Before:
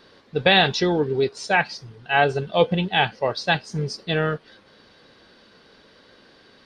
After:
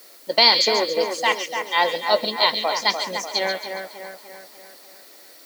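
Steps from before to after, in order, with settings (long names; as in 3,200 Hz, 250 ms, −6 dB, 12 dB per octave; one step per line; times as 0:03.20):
speed change +22%
high-pass filter 290 Hz 24 dB per octave
parametric band 4,300 Hz +9 dB 0.29 octaves
echo with a time of its own for lows and highs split 2,300 Hz, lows 296 ms, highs 138 ms, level −6.5 dB
background noise blue −48 dBFS
level −1 dB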